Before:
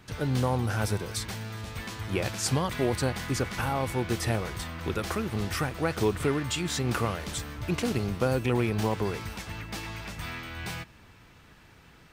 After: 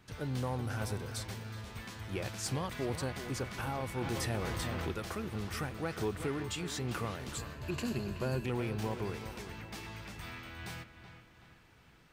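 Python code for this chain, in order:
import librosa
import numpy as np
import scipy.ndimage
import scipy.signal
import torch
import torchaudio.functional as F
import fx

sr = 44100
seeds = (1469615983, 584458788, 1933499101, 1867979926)

p1 = fx.ripple_eq(x, sr, per_octave=1.4, db=9, at=(7.35, 8.46))
p2 = 10.0 ** (-17.0 / 20.0) * np.tanh(p1 / 10.0 ** (-17.0 / 20.0))
p3 = p2 + fx.echo_wet_lowpass(p2, sr, ms=376, feedback_pct=43, hz=3600.0, wet_db=-10.5, dry=0)
p4 = fx.env_flatten(p3, sr, amount_pct=70, at=(4.01, 4.92))
y = F.gain(torch.from_numpy(p4), -8.0).numpy()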